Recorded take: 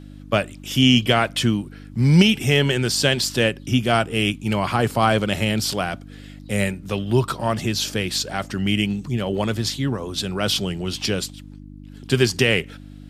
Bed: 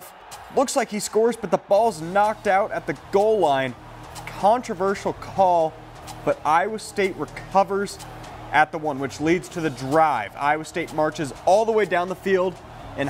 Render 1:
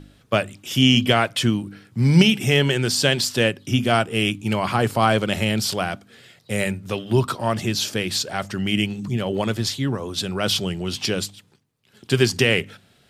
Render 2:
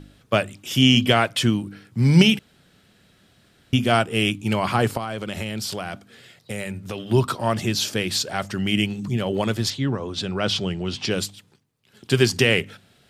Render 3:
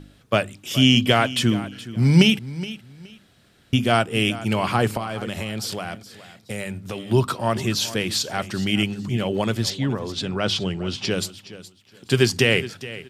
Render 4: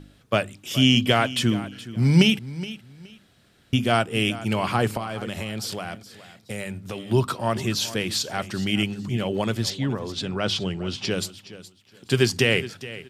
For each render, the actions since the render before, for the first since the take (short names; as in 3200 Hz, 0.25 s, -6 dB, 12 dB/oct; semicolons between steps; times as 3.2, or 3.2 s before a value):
de-hum 50 Hz, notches 6
2.39–3.73 room tone; 4.97–7 compressor, threshold -25 dBFS; 9.7–11.11 air absorption 83 m
feedback echo 0.42 s, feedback 22%, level -16 dB
gain -2 dB